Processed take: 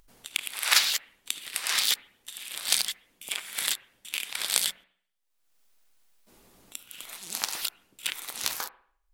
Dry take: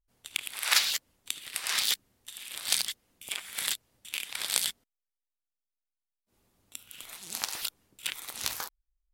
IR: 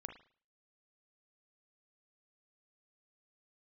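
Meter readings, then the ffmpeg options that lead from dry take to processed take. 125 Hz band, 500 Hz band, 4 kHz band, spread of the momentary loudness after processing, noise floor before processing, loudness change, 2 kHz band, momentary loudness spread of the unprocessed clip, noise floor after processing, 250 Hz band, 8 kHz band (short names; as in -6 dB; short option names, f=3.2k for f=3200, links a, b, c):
n/a, +3.0 dB, +3.0 dB, 17 LU, under -85 dBFS, +3.0 dB, +3.0 dB, 17 LU, -74 dBFS, +2.0 dB, +3.0 dB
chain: -filter_complex "[0:a]equalizer=f=77:t=o:w=1.1:g=-12.5,acompressor=mode=upward:threshold=-50dB:ratio=2.5,asplit=2[a][b];[1:a]atrim=start_sample=2205,asetrate=33075,aresample=44100[c];[b][c]afir=irnorm=-1:irlink=0,volume=-4.5dB[d];[a][d]amix=inputs=2:normalize=0"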